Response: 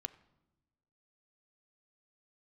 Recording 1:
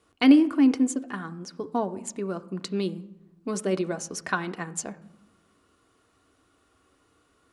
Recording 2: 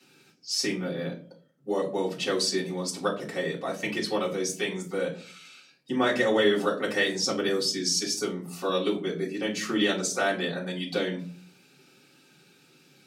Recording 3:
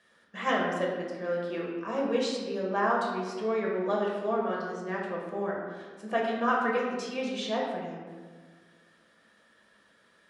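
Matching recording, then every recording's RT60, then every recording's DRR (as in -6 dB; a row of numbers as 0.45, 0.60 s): 1; not exponential, 0.45 s, 1.6 s; 7.5, -7.0, -3.5 dB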